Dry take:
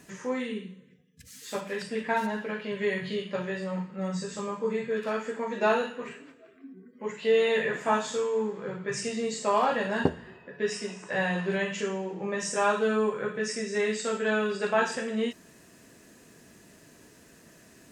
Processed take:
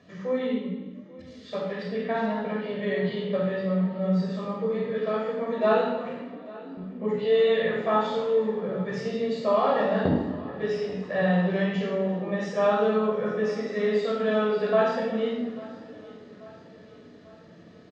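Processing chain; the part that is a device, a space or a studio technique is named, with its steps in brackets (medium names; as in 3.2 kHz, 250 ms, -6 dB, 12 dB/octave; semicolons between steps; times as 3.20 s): frequency-shifting delay pedal into a guitar cabinet (frequency-shifting echo 345 ms, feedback 37%, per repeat +42 Hz, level -21 dB; cabinet simulation 110–3900 Hz, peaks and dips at 140 Hz -5 dB, 390 Hz -4 dB, 1 kHz -6 dB, 1.6 kHz -10 dB, 2.6 kHz -10 dB); 6.77–7.19 s: bass shelf 360 Hz +11 dB; feedback delay 840 ms, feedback 54%, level -20.5 dB; simulated room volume 3400 m³, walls furnished, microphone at 5.8 m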